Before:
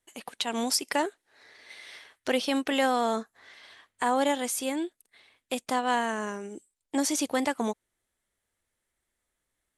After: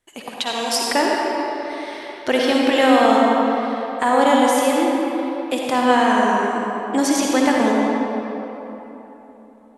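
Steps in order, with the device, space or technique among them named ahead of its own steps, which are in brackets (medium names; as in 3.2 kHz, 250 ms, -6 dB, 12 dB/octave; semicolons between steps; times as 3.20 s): 0.38–0.92 s: Bessel high-pass 510 Hz, order 2; swimming-pool hall (reverberation RT60 3.5 s, pre-delay 49 ms, DRR -3 dB; treble shelf 5.3 kHz -7 dB); trim +7.5 dB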